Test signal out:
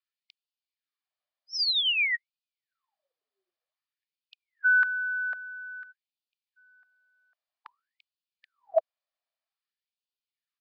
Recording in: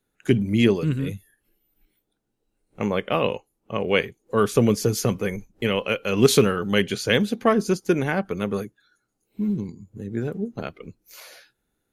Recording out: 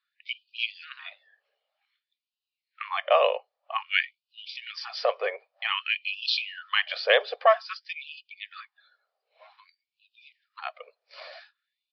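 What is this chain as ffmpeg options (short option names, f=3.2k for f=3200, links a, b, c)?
-filter_complex "[0:a]lowshelf=f=450:t=q:w=3:g=-12,aecho=1:1:1.7:0.34,acrossover=split=110|1100|1900[a][b][c][d];[b]alimiter=limit=-12dB:level=0:latency=1:release=259[e];[a][e][c][d]amix=inputs=4:normalize=0,aresample=11025,aresample=44100,afftfilt=real='re*gte(b*sr/1024,350*pow(2500/350,0.5+0.5*sin(2*PI*0.52*pts/sr)))':imag='im*gte(b*sr/1024,350*pow(2500/350,0.5+0.5*sin(2*PI*0.52*pts/sr)))':win_size=1024:overlap=0.75"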